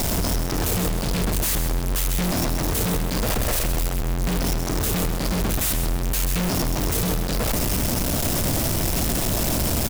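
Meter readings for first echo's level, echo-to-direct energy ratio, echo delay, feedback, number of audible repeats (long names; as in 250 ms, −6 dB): −8.0 dB, −7.5 dB, 131 ms, 29%, 2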